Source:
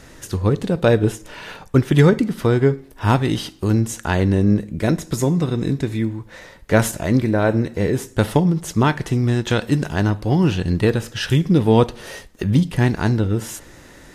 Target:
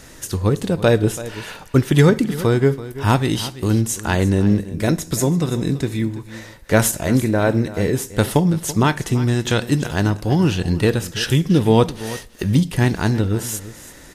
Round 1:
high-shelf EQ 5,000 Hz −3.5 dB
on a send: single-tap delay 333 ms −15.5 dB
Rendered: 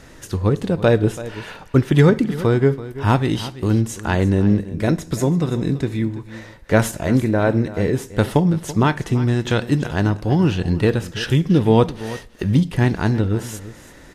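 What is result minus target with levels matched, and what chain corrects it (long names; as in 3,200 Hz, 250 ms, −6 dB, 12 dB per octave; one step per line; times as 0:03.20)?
8,000 Hz band −8.5 dB
high-shelf EQ 5,000 Hz +8.5 dB
on a send: single-tap delay 333 ms −15.5 dB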